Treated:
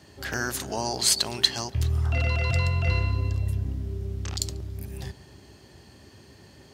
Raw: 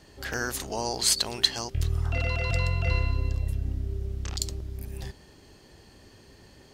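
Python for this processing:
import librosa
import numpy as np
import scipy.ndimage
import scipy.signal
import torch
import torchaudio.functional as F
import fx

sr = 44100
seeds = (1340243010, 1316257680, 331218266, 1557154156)

p1 = scipy.signal.sosfilt(scipy.signal.butter(4, 73.0, 'highpass', fs=sr, output='sos'), x)
p2 = fx.low_shelf(p1, sr, hz=130.0, db=4.5)
p3 = fx.notch(p2, sr, hz=480.0, q=12.0)
p4 = p3 + fx.echo_filtered(p3, sr, ms=142, feedback_pct=77, hz=2000.0, wet_db=-20.0, dry=0)
y = F.gain(torch.from_numpy(p4), 1.5).numpy()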